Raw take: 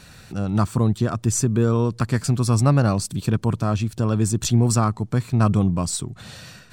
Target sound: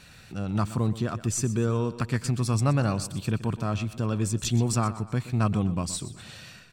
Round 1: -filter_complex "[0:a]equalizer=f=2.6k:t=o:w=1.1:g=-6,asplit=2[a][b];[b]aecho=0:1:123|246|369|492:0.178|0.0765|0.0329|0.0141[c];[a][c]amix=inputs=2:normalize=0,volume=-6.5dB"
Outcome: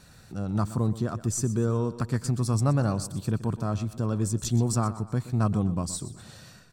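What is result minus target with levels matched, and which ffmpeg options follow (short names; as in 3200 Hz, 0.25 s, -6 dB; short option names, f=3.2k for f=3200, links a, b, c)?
2000 Hz band -5.5 dB
-filter_complex "[0:a]equalizer=f=2.6k:t=o:w=1.1:g=5.5,asplit=2[a][b];[b]aecho=0:1:123|246|369|492:0.178|0.0765|0.0329|0.0141[c];[a][c]amix=inputs=2:normalize=0,volume=-6.5dB"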